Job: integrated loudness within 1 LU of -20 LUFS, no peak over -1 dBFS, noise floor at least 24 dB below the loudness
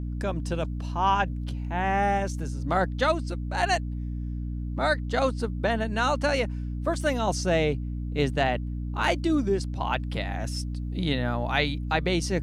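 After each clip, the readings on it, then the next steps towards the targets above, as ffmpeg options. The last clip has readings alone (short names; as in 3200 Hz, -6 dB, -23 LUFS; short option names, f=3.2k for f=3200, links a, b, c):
hum 60 Hz; harmonics up to 300 Hz; hum level -29 dBFS; loudness -27.5 LUFS; peak -9.0 dBFS; loudness target -20.0 LUFS
-> -af "bandreject=f=60:t=h:w=4,bandreject=f=120:t=h:w=4,bandreject=f=180:t=h:w=4,bandreject=f=240:t=h:w=4,bandreject=f=300:t=h:w=4"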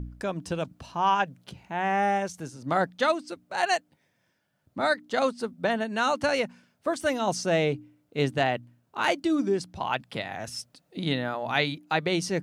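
hum none; loudness -28.0 LUFS; peak -9.5 dBFS; loudness target -20.0 LUFS
-> -af "volume=8dB"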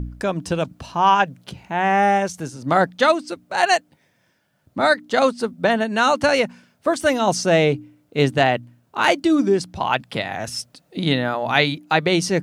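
loudness -20.0 LUFS; peak -1.5 dBFS; noise floor -64 dBFS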